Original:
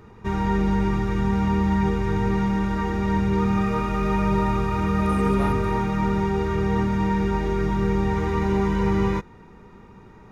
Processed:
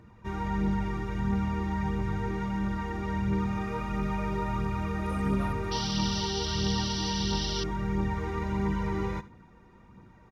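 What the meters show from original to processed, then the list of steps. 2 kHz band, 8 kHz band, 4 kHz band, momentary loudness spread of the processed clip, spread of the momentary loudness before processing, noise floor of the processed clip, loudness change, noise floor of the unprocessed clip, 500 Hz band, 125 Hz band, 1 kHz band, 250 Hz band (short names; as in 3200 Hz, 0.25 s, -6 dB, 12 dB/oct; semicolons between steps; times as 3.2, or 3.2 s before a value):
-7.0 dB, n/a, +7.0 dB, 4 LU, 3 LU, -55 dBFS, -7.5 dB, -47 dBFS, -10.5 dB, -7.0 dB, -8.0 dB, -8.5 dB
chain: notch comb 420 Hz; echo 74 ms -17 dB; painted sound noise, 5.71–7.64, 2700–6000 Hz -29 dBFS; phaser 1.5 Hz, delay 2.9 ms, feedback 36%; gain -7.5 dB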